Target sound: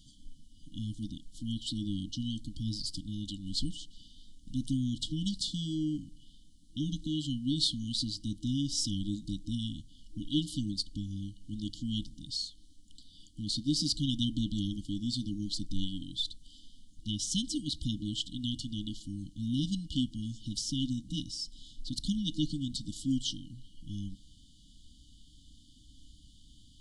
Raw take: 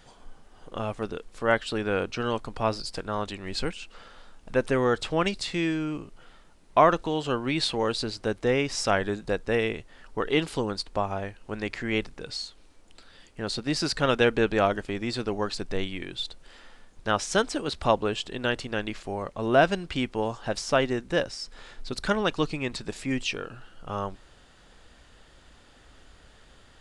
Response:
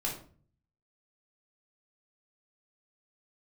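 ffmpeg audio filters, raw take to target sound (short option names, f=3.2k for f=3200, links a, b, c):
-filter_complex "[0:a]asplit=2[a][b];[1:a]atrim=start_sample=2205[c];[b][c]afir=irnorm=-1:irlink=0,volume=-25.5dB[d];[a][d]amix=inputs=2:normalize=0,afftfilt=real='re*(1-between(b*sr/4096,320,2900))':imag='im*(1-between(b*sr/4096,320,2900))':win_size=4096:overlap=0.75,volume=-1.5dB"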